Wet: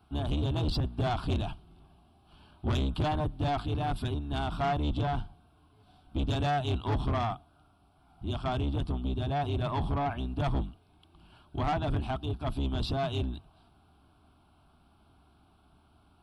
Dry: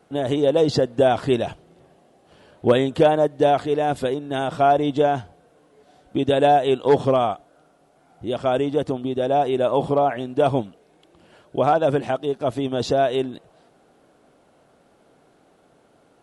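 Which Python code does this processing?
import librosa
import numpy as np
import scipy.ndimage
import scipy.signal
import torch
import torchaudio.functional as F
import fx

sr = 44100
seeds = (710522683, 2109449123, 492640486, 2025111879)

y = fx.octave_divider(x, sr, octaves=2, level_db=2.0)
y = fx.peak_eq(y, sr, hz=5700.0, db=2.0, octaves=0.77)
y = fx.fixed_phaser(y, sr, hz=1900.0, stages=6)
y = 10.0 ** (-21.0 / 20.0) * np.tanh(y / 10.0 ** (-21.0 / 20.0))
y = y * librosa.db_to_amplitude(-3.5)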